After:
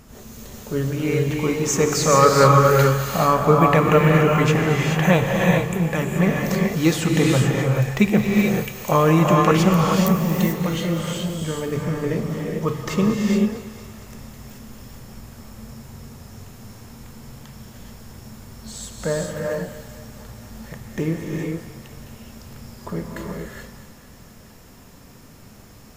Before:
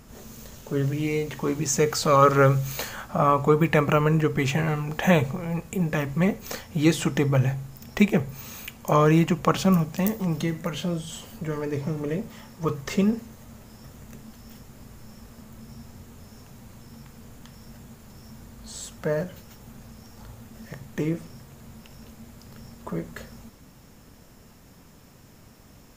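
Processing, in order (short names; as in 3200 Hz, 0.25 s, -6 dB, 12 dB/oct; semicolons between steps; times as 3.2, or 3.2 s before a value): thinning echo 0.228 s, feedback 68%, level -14.5 dB; non-linear reverb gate 0.46 s rising, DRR -1 dB; gain +2 dB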